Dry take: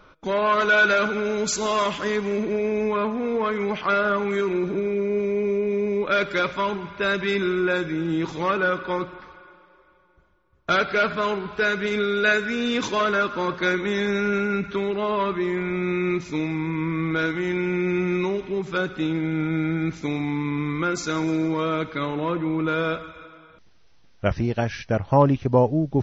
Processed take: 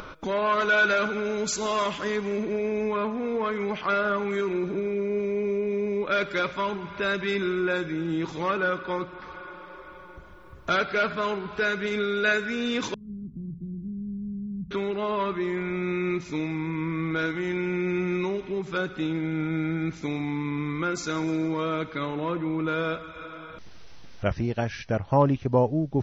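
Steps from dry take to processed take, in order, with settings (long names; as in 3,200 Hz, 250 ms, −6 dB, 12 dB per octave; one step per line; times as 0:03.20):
0:12.94–0:14.71: inverse Chebyshev low-pass filter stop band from 620 Hz, stop band 60 dB
upward compression, threshold −25 dBFS
level −3.5 dB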